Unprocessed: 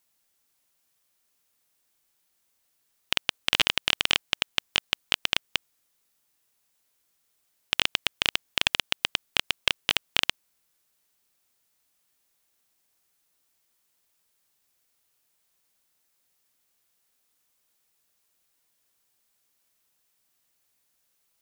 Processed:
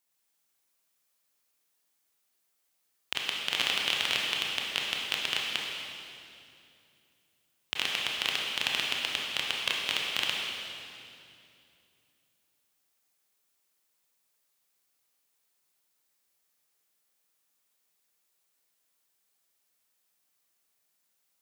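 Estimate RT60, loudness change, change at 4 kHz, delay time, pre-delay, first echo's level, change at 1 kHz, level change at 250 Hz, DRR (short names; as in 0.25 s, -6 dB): 2.6 s, -3.5 dB, -3.0 dB, none, 23 ms, none, -3.0 dB, -4.5 dB, -2.5 dB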